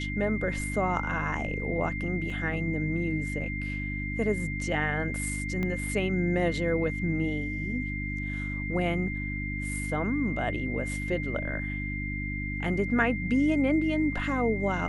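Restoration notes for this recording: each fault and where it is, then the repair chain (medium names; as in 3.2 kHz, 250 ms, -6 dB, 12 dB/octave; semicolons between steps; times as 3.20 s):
hum 50 Hz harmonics 6 -34 dBFS
whine 2.1 kHz -35 dBFS
2.30 s: dropout 2.3 ms
5.63 s: pop -20 dBFS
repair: de-click; band-stop 2.1 kHz, Q 30; de-hum 50 Hz, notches 6; interpolate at 2.30 s, 2.3 ms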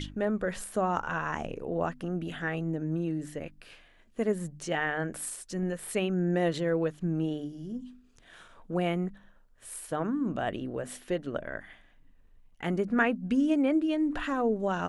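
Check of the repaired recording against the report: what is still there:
5.63 s: pop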